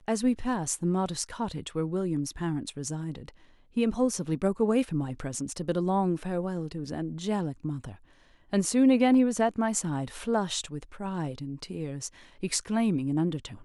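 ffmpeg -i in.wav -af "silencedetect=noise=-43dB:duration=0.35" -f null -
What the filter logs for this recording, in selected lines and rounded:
silence_start: 3.29
silence_end: 3.76 | silence_duration: 0.47
silence_start: 7.96
silence_end: 8.53 | silence_duration: 0.57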